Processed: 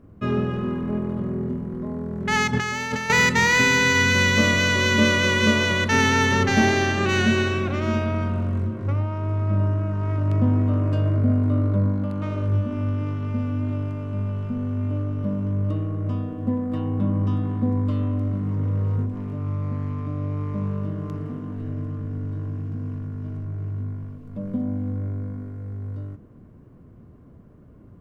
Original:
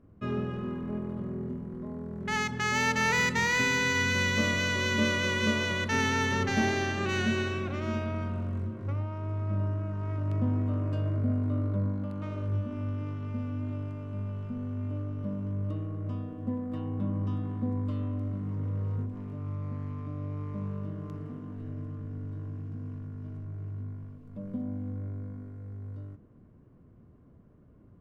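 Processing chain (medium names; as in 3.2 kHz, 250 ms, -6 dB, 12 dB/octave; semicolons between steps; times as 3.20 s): 2.53–3.10 s: compressor with a negative ratio -35 dBFS, ratio -1; trim +8.5 dB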